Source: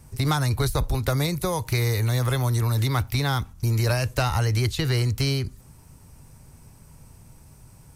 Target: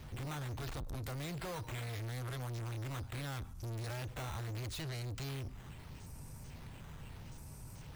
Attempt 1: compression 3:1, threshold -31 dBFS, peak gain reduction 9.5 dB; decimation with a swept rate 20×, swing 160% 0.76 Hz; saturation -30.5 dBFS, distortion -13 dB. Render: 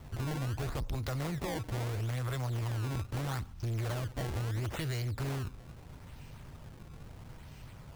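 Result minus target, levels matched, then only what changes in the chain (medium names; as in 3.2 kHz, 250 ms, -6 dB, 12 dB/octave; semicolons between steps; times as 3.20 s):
saturation: distortion -7 dB; decimation with a swept rate: distortion +5 dB
change: decimation with a swept rate 5×, swing 160% 0.76 Hz; change: saturation -39.5 dBFS, distortion -7 dB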